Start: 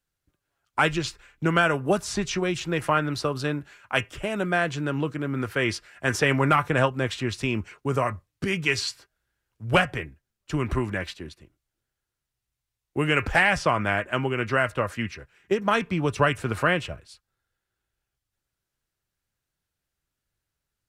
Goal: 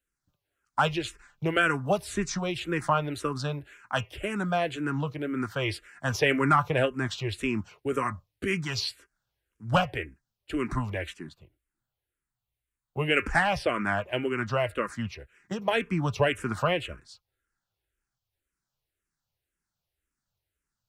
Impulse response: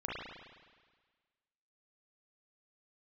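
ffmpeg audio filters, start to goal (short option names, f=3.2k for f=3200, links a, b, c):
-filter_complex "[0:a]asettb=1/sr,asplit=3[a][b][c];[a]atrim=end=11.254[d];[b]atrim=start=11.25:end=13.11,asetpts=PTS-STARTPTS,afade=t=in:d=0.004:c=qsin,afade=t=out:st=1.856:d=0.004:c=qsin,equalizer=f=5.6k:w=2.5:g=-13[e];[c]atrim=start=13.106[f];[d][e]acrossfade=d=0.004:c1=hsin:c2=qsin[g];[g][f]acrossfade=d=0.004:c1=qsin:c2=hsin,asplit=2[h][i];[i]afreqshift=-1.9[j];[h][j]amix=inputs=2:normalize=1"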